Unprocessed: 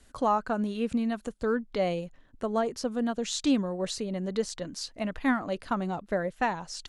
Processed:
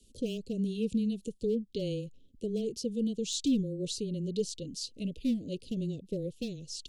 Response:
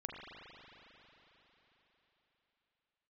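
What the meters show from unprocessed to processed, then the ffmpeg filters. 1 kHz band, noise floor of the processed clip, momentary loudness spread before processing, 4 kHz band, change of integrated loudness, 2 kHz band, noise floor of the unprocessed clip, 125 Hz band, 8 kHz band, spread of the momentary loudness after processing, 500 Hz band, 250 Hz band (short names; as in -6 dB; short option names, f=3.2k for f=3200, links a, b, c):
under -35 dB, -60 dBFS, 7 LU, -2.0 dB, -4.0 dB, -19.5 dB, -58 dBFS, +1.5 dB, -1.5 dB, 7 LU, -5.0 dB, -2.0 dB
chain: -af "volume=20.5dB,asoftclip=hard,volume=-20.5dB,asuperstop=centerf=1200:order=12:qfactor=0.52,afreqshift=-15,volume=-1.5dB"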